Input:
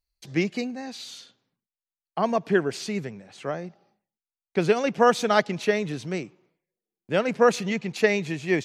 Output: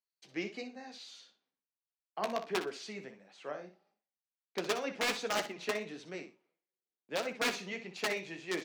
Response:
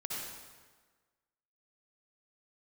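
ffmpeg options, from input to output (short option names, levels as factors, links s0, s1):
-filter_complex "[0:a]lowshelf=f=210:g=-10,aeval=exprs='(mod(4.73*val(0)+1,2)-1)/4.73':c=same,asplit=2[s0][s1];[s1]aecho=0:1:61|122:0.282|0.0507[s2];[s0][s2]amix=inputs=2:normalize=0,flanger=delay=8.7:depth=8.5:regen=-41:speed=1.5:shape=triangular,acrossover=split=170 6900:gain=0.0708 1 0.251[s3][s4][s5];[s3][s4][s5]amix=inputs=3:normalize=0,volume=0.501"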